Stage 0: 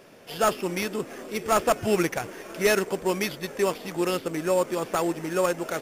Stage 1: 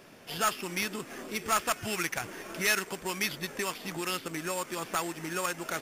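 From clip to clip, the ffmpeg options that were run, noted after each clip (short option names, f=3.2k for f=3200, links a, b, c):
-filter_complex "[0:a]equalizer=f=500:w=1.6:g=-6,acrossover=split=1100[a][b];[a]acompressor=threshold=-35dB:ratio=6[c];[c][b]amix=inputs=2:normalize=0"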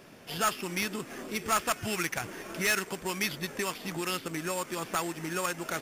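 -af "equalizer=f=110:t=o:w=3:g=3,volume=17.5dB,asoftclip=hard,volume=-17.5dB"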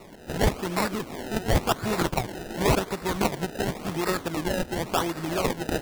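-af "acrusher=samples=27:mix=1:aa=0.000001:lfo=1:lforange=27:lforate=0.92,volume=6dB"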